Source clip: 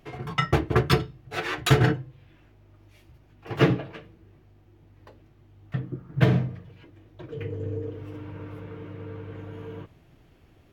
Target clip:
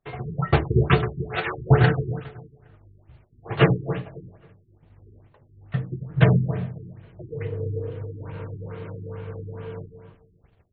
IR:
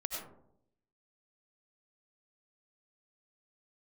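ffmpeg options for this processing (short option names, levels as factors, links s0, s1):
-filter_complex "[0:a]asettb=1/sr,asplit=3[s0][s1][s2];[s0]atrim=end=8.194[s3];[s1]atrim=start=8.19:end=9,asetpts=PTS-STARTPTS,afade=t=in:d=0.004:c=qsin,afade=t=out:st=0.806:d=0.004:c=qsin,aeval=exprs='val(0)+0.5*0.00355*sgn(val(0))':c=same[s4];[s2]atrim=start=8.996[s5];[s3][s4]acrossfade=d=0.004:c1=hsin:c2=qsin[s6];[s6][s5]acrossfade=d=0.004:c1=qsin:c2=hsin,agate=range=0.0562:threshold=0.002:ratio=16:detection=peak,equalizer=f=290:t=o:w=0.35:g=-11.5,asplit=2[s7][s8];[s8]adelay=272,lowpass=f=4300:p=1,volume=0.299,asplit=2[s9][s10];[s10]adelay=272,lowpass=f=4300:p=1,volume=0.22,asplit=2[s11][s12];[s12]adelay=272,lowpass=f=4300:p=1,volume=0.22[s13];[s7][s9][s11][s13]amix=inputs=4:normalize=0,afftfilt=real='re*lt(b*sr/1024,410*pow(4600/410,0.5+0.5*sin(2*PI*2.3*pts/sr)))':imag='im*lt(b*sr/1024,410*pow(4600/410,0.5+0.5*sin(2*PI*2.3*pts/sr)))':win_size=1024:overlap=0.75,volume=1.58"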